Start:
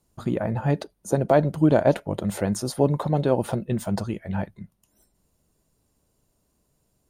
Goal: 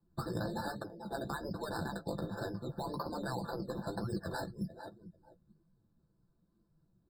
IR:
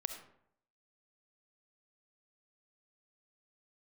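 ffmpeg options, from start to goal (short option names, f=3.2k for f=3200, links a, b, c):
-filter_complex "[0:a]equalizer=f=690:t=o:w=1:g=-5,afftfilt=real='re*lt(hypot(re,im),0.224)':imag='im*lt(hypot(re,im),0.224)':win_size=1024:overlap=0.75,asplit=2[a][b];[b]adelay=443,lowpass=f=1.7k:p=1,volume=-17dB,asplit=2[c][d];[d]adelay=443,lowpass=f=1.7k:p=1,volume=0.26[e];[a][c][e]amix=inputs=3:normalize=0,acrossover=split=190[f][g];[g]acompressor=threshold=-43dB:ratio=16[h];[f][h]amix=inputs=2:normalize=0,aresample=8000,aresample=44100,acrusher=samples=11:mix=1:aa=0.000001:lfo=1:lforange=6.6:lforate=1.9,aecho=1:1:5.9:0.39,afftdn=nr=15:nf=-61,lowshelf=f=150:g=-10.5,flanger=delay=8.2:depth=9.2:regen=-21:speed=1.2:shape=triangular,afftfilt=real='re*eq(mod(floor(b*sr/1024/1800),2),0)':imag='im*eq(mod(floor(b*sr/1024/1800),2),0)':win_size=1024:overlap=0.75,volume=11dB"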